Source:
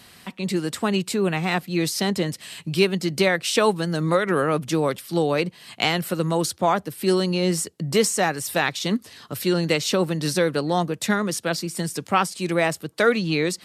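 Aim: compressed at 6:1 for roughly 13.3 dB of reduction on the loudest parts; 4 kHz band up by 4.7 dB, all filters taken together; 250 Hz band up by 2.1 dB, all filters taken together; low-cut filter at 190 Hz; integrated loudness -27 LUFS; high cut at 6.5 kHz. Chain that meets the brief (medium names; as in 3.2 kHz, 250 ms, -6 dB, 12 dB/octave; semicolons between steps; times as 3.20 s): high-pass 190 Hz; low-pass 6.5 kHz; peaking EQ 250 Hz +6 dB; peaking EQ 4 kHz +6.5 dB; compression 6:1, threshold -27 dBFS; trim +3.5 dB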